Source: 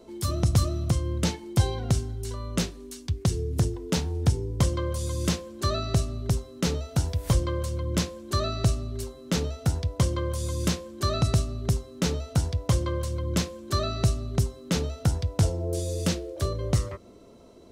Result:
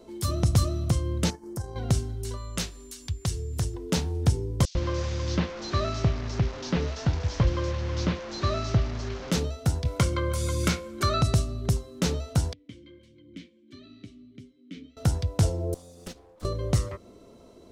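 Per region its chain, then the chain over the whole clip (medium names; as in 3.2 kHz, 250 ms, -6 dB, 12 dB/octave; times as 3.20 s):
1.30–1.76 s: high-order bell 3 kHz -15.5 dB 1.2 oct + transient shaper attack -4 dB, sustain -9 dB + compression 2:1, threshold -35 dBFS
2.36–3.73 s: peaking EQ 280 Hz -9 dB 2.6 oct + whistle 7.2 kHz -57 dBFS + upward compressor, threshold -39 dBFS
4.65–9.31 s: one-bit delta coder 32 kbps, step -31.5 dBFS + bands offset in time highs, lows 100 ms, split 3.7 kHz
9.85–11.22 s: peaking EQ 2 kHz +2.5 dB 1.6 oct + small resonant body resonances 1.4/2.2 kHz, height 13 dB, ringing for 30 ms + three bands compressed up and down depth 40%
12.53–14.97 s: flange 1.5 Hz, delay 5.9 ms, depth 7.1 ms, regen -38% + vowel filter i
15.74–16.45 s: comb filter that takes the minimum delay 4 ms + gate -27 dBFS, range -16 dB + compression, threshold -35 dBFS
whole clip: none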